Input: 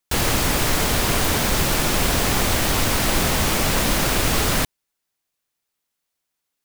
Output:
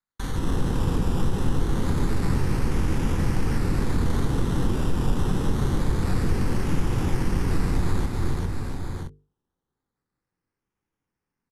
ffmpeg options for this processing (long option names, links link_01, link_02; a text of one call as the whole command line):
ffmpeg -i in.wav -filter_complex "[0:a]aresample=8000,aresample=44100,acrusher=samples=9:mix=1:aa=0.000001:lfo=1:lforange=5.4:lforate=0.44,asplit=2[link_01][link_02];[link_02]aecho=0:1:162|229|399|560|586:0.422|0.398|0.15|0.133|0.119[link_03];[link_01][link_03]amix=inputs=2:normalize=0,acompressor=threshold=-26dB:ratio=4,equalizer=frequency=1100:width_type=o:width=0.33:gain=-12.5,asetrate=25442,aresample=44100,equalizer=frequency=550:width_type=o:width=2.1:gain=-6,bandreject=frequency=50:width_type=h:width=6,bandreject=frequency=100:width_type=h:width=6,bandreject=frequency=150:width_type=h:width=6,bandreject=frequency=200:width_type=h:width=6,bandreject=frequency=250:width_type=h:width=6,bandreject=frequency=300:width_type=h:width=6,bandreject=frequency=350:width_type=h:width=6,bandreject=frequency=400:width_type=h:width=6,bandreject=frequency=450:width_type=h:width=6,asplit=2[link_04][link_05];[link_05]adelay=22,volume=-12dB[link_06];[link_04][link_06]amix=inputs=2:normalize=0,acrossover=split=790[link_07][link_08];[link_07]dynaudnorm=framelen=140:gausssize=5:maxgain=13dB[link_09];[link_09][link_08]amix=inputs=2:normalize=0,volume=-4dB" out.wav